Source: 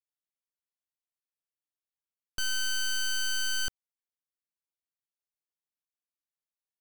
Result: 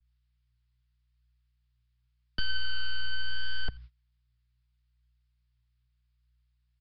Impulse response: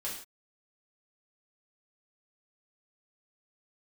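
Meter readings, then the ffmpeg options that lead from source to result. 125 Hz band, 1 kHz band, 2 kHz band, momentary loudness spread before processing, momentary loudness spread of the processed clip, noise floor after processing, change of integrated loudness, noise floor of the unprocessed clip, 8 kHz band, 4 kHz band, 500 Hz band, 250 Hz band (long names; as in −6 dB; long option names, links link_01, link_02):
+10.0 dB, −2.0 dB, −3.0 dB, 6 LU, 8 LU, −74 dBFS, −5.5 dB, below −85 dBFS, below −40 dB, −4.0 dB, −2.0 dB, +2.0 dB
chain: -filter_complex "[0:a]aeval=exprs='val(0)+0.5*0.00188*sgn(val(0))':channel_layout=same,aeval=exprs='val(0)+0.00158*(sin(2*PI*60*n/s)+sin(2*PI*2*60*n/s)/2+sin(2*PI*3*60*n/s)/3+sin(2*PI*4*60*n/s)/4+sin(2*PI*5*60*n/s)/5)':channel_layout=same,equalizer=frequency=100:width=0.33:gain=7,acrossover=split=140[link_01][link_02];[link_02]acompressor=threshold=-34dB:ratio=2[link_03];[link_01][link_03]amix=inputs=2:normalize=0,flanger=delay=0.6:depth=8.6:regen=77:speed=0.79:shape=sinusoidal,aecho=1:1:86:0.0708,acrossover=split=130|980|4300[link_04][link_05][link_06][link_07];[link_05]acrusher=bits=7:mix=0:aa=0.000001[link_08];[link_04][link_08][link_06][link_07]amix=inputs=4:normalize=0,agate=range=-23dB:threshold=-50dB:ratio=16:detection=peak,aresample=11025,aresample=44100,adynamicequalizer=threshold=0.00178:dfrequency=2600:dqfactor=0.7:tfrequency=2600:tqfactor=0.7:attack=5:release=100:ratio=0.375:range=3.5:mode=cutabove:tftype=highshelf,volume=7.5dB"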